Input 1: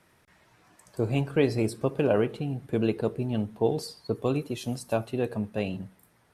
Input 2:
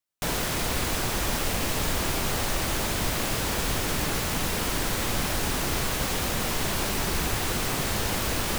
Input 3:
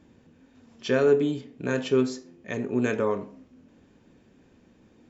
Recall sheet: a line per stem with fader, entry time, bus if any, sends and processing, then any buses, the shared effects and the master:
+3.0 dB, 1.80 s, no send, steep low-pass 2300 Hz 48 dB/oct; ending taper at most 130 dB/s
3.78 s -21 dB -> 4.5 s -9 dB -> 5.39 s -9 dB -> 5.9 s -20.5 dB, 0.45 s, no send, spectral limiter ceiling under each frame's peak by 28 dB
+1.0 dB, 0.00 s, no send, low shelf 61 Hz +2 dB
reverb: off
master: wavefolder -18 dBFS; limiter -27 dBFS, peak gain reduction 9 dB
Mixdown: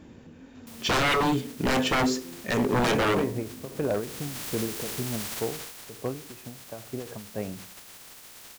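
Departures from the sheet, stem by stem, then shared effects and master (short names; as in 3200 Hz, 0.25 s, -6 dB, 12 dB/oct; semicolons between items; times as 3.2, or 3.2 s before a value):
stem 1 +3.0 dB -> -3.0 dB; stem 3 +1.0 dB -> +8.0 dB; master: missing limiter -27 dBFS, peak gain reduction 9 dB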